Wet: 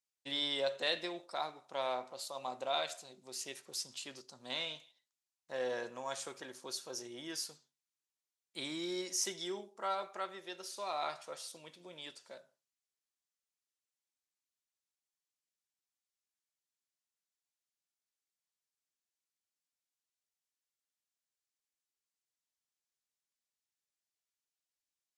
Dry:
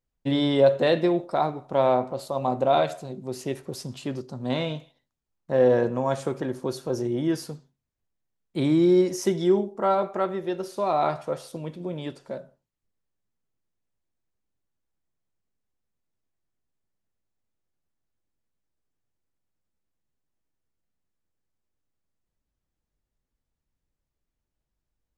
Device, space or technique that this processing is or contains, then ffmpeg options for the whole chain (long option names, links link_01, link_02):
piezo pickup straight into a mixer: -af "lowpass=7200,aderivative,volume=4.5dB"